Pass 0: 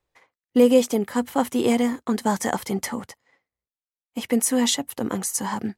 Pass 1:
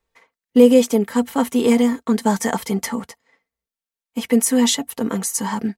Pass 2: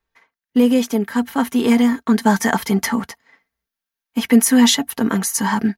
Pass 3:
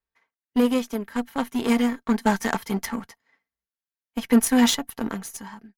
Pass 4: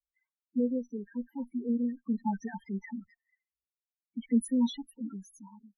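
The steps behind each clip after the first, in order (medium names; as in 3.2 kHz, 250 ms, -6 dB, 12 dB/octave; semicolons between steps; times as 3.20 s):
band-stop 710 Hz, Q 18; comb 4.4 ms, depth 54%; trim +2 dB
graphic EQ with 31 bands 500 Hz -8 dB, 1.6 kHz +6 dB, 8 kHz -9 dB; gain riding 2 s; trim +2 dB
fade out at the end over 0.78 s; Chebyshev shaper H 7 -22 dB, 8 -28 dB, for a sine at -1 dBFS; trim -5.5 dB
loudest bins only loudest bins 4; trim -8 dB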